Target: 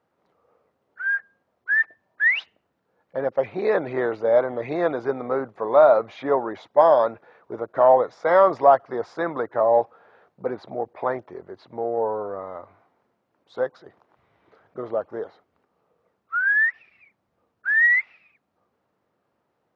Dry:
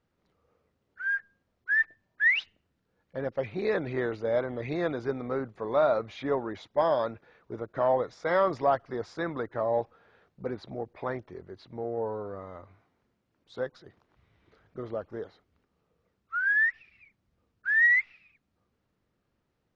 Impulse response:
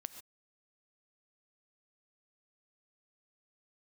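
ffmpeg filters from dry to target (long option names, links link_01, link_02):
-af "highpass=100,equalizer=frequency=780:width=0.54:gain=13,volume=-2dB"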